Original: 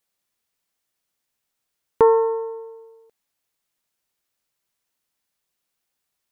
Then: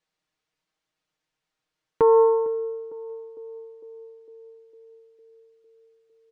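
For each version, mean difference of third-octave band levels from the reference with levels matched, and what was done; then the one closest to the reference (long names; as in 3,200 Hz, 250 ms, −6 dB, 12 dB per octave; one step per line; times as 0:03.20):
1.5 dB: comb filter 6.4 ms, depth 72%
brickwall limiter −10 dBFS, peak gain reduction 8 dB
high-frequency loss of the air 110 metres
on a send: feedback echo with a band-pass in the loop 454 ms, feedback 66%, band-pass 410 Hz, level −16 dB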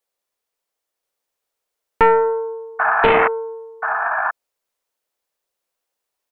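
5.5 dB: octave-band graphic EQ 125/250/500/1,000 Hz −10/−3/+9/+3 dB
sound drawn into the spectrogram noise, 0:02.79–0:03.28, 620–1,800 Hz −13 dBFS
on a send: single-tap delay 1,031 ms −4 dB
on the sum: highs frequency-modulated by the lows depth 0.55 ms
level −3.5 dB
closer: first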